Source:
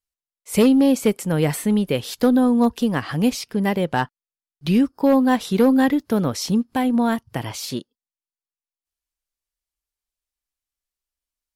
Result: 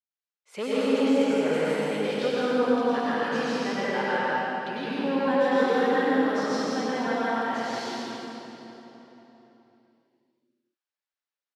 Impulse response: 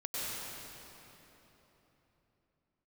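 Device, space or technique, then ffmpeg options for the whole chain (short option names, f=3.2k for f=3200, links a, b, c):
station announcement: -filter_complex "[0:a]highpass=400,lowpass=4.6k,equalizer=f=1.5k:t=o:w=0.51:g=5,aecho=1:1:113.7|166.2:0.316|0.708[a];[1:a]atrim=start_sample=2205[b];[a][b]afir=irnorm=-1:irlink=0,volume=-8dB"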